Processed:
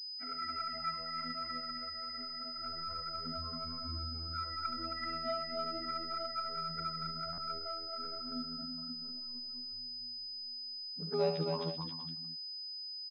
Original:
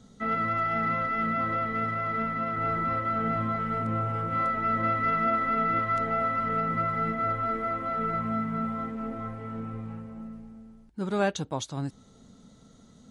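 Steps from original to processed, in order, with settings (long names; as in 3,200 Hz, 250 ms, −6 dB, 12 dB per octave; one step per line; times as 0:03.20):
spectral dynamics exaggerated over time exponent 3
phases set to zero 81.9 Hz
flanger swept by the level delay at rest 10.3 ms, full sweep at −32 dBFS
multi-tap delay 56/71/127/267/384/462 ms −11/−8/−12/−4/−13/−11 dB
buffer that repeats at 0:07.32, samples 512, times 4
switching amplifier with a slow clock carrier 5,000 Hz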